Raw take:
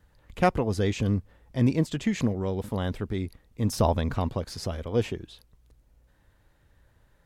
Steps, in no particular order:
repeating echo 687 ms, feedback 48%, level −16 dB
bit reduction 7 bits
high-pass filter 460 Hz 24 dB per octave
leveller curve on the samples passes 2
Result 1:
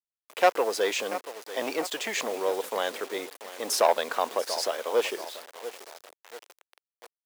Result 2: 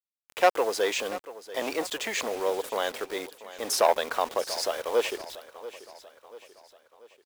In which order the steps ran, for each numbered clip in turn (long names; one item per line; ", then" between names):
repeating echo, then leveller curve on the samples, then bit reduction, then high-pass filter
leveller curve on the samples, then high-pass filter, then bit reduction, then repeating echo